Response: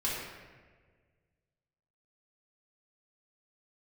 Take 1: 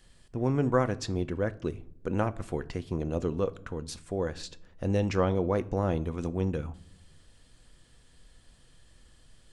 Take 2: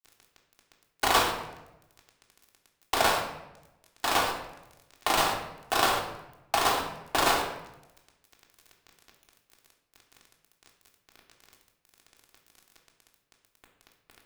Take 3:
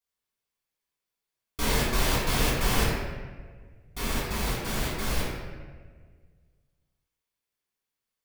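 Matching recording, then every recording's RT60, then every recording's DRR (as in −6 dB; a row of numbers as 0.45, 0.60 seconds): 3; 0.70, 0.95, 1.6 seconds; 12.5, −0.5, −8.0 decibels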